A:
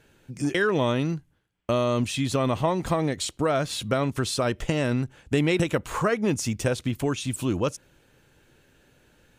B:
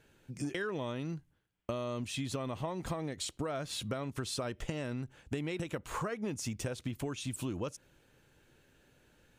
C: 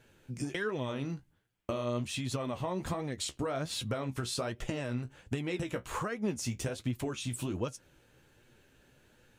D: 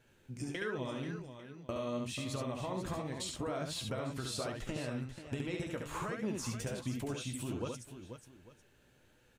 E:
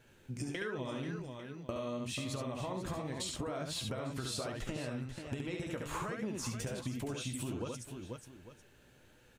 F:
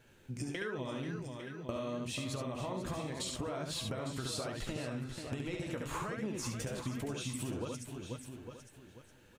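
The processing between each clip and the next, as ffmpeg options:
ffmpeg -i in.wav -af "acompressor=threshold=-27dB:ratio=6,volume=-6dB" out.wav
ffmpeg -i in.wav -af "flanger=delay=7.9:depth=8.9:regen=42:speed=1.3:shape=sinusoidal,volume=6dB" out.wav
ffmpeg -i in.wav -af "aecho=1:1:70|487|848:0.631|0.316|0.112,volume=-5dB" out.wav
ffmpeg -i in.wav -af "acompressor=threshold=-39dB:ratio=6,volume=4dB" out.wav
ffmpeg -i in.wav -af "aecho=1:1:856:0.266" out.wav

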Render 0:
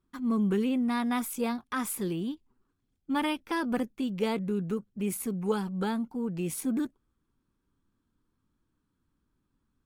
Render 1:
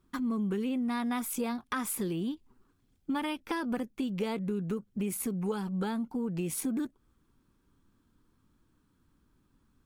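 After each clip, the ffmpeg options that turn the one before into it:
ffmpeg -i in.wav -af "acompressor=threshold=-39dB:ratio=4,volume=7.5dB" out.wav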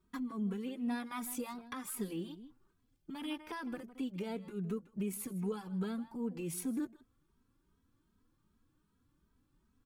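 ffmpeg -i in.wav -filter_complex "[0:a]alimiter=level_in=0.5dB:limit=-24dB:level=0:latency=1:release=365,volume=-0.5dB,asplit=2[link_01][link_02];[link_02]adelay=157.4,volume=-16dB,highshelf=frequency=4000:gain=-3.54[link_03];[link_01][link_03]amix=inputs=2:normalize=0,asplit=2[link_04][link_05];[link_05]adelay=2.8,afreqshift=2.6[link_06];[link_04][link_06]amix=inputs=2:normalize=1,volume=-2.5dB" out.wav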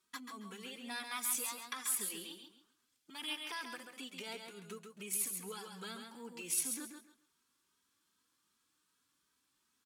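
ffmpeg -i in.wav -af "bandpass=frequency=6700:width_type=q:width=0.53:csg=0,aecho=1:1:136|272|408:0.501|0.11|0.0243,volume=10dB" out.wav

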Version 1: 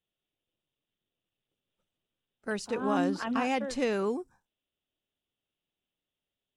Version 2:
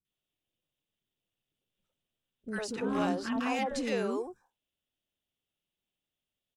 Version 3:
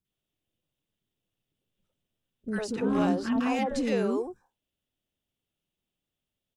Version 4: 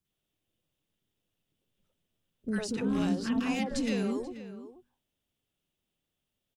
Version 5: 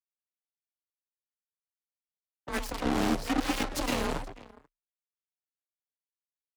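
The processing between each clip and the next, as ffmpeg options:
ffmpeg -i in.wav -filter_complex "[0:a]asoftclip=type=hard:threshold=-20.5dB,acrossover=split=380|1200[link_01][link_02][link_03];[link_03]adelay=50[link_04];[link_02]adelay=100[link_05];[link_01][link_05][link_04]amix=inputs=3:normalize=0" out.wav
ffmpeg -i in.wav -af "lowshelf=frequency=500:gain=7.5" out.wav
ffmpeg -i in.wav -filter_complex "[0:a]acrossover=split=240|2200[link_01][link_02][link_03];[link_01]bandreject=frequency=60.88:width_type=h:width=4,bandreject=frequency=121.76:width_type=h:width=4,bandreject=frequency=182.64:width_type=h:width=4,bandreject=frequency=243.52:width_type=h:width=4[link_04];[link_02]acompressor=threshold=-38dB:ratio=6[link_05];[link_04][link_05][link_03]amix=inputs=3:normalize=0,asplit=2[link_06][link_07];[link_07]adelay=484,volume=-13dB,highshelf=frequency=4000:gain=-10.9[link_08];[link_06][link_08]amix=inputs=2:normalize=0,volume=2dB" out.wav
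ffmpeg -i in.wav -af "acrusher=bits=5:mix=0:aa=0.5,aeval=exprs='0.133*(cos(1*acos(clip(val(0)/0.133,-1,1)))-cos(1*PI/2))+0.0335*(cos(7*acos(clip(val(0)/0.133,-1,1)))-cos(7*PI/2))+0.015*(cos(8*acos(clip(val(0)/0.133,-1,1)))-cos(8*PI/2))':channel_layout=same,afreqshift=30" out.wav

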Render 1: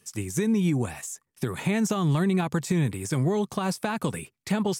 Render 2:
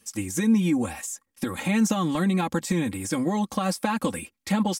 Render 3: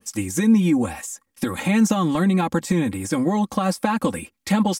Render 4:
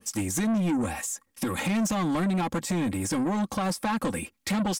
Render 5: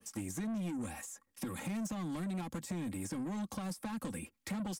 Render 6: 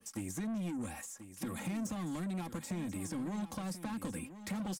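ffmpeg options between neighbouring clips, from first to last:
ffmpeg -i in.wav -af "aecho=1:1:3.7:0.92" out.wav
ffmpeg -i in.wav -af "adynamicequalizer=threshold=0.00631:dfrequency=1900:dqfactor=0.7:tfrequency=1900:tqfactor=0.7:attack=5:release=100:ratio=0.375:range=2:mode=cutabove:tftype=highshelf,volume=4.5dB" out.wav
ffmpeg -i in.wav -filter_complex "[0:a]asplit=2[link_01][link_02];[link_02]acompressor=threshold=-26dB:ratio=6,volume=-2dB[link_03];[link_01][link_03]amix=inputs=2:normalize=0,asoftclip=type=tanh:threshold=-19dB,volume=-3.5dB" out.wav
ffmpeg -i in.wav -filter_complex "[0:a]acrossover=split=120|250|2100|6200[link_01][link_02][link_03][link_04][link_05];[link_01]acompressor=threshold=-46dB:ratio=4[link_06];[link_02]acompressor=threshold=-33dB:ratio=4[link_07];[link_03]acompressor=threshold=-39dB:ratio=4[link_08];[link_04]acompressor=threshold=-50dB:ratio=4[link_09];[link_05]acompressor=threshold=-42dB:ratio=4[link_10];[link_06][link_07][link_08][link_09][link_10]amix=inputs=5:normalize=0,volume=-6.5dB" out.wav
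ffmpeg -i in.wav -af "aecho=1:1:1036:0.251" out.wav

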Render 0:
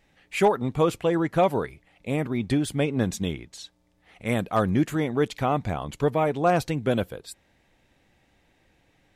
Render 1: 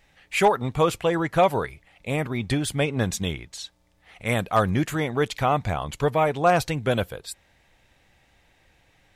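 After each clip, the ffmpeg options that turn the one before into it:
ffmpeg -i in.wav -af "equalizer=frequency=270:width=0.76:gain=-8,volume=5dB" out.wav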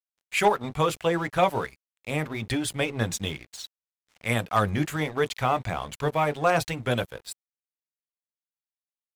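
ffmpeg -i in.wav -filter_complex "[0:a]acrossover=split=820|1000[link_01][link_02][link_03];[link_01]flanger=delay=16.5:depth=3.7:speed=0.72[link_04];[link_02]acompressor=mode=upward:threshold=-54dB:ratio=2.5[link_05];[link_04][link_05][link_03]amix=inputs=3:normalize=0,aeval=exprs='sgn(val(0))*max(abs(val(0))-0.00596,0)':channel_layout=same" out.wav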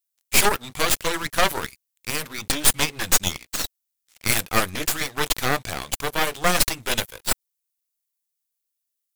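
ffmpeg -i in.wav -af "crystalizer=i=8.5:c=0,aeval=exprs='1.19*(cos(1*acos(clip(val(0)/1.19,-1,1)))-cos(1*PI/2))+0.376*(cos(8*acos(clip(val(0)/1.19,-1,1)))-cos(8*PI/2))':channel_layout=same,volume=-6.5dB" out.wav

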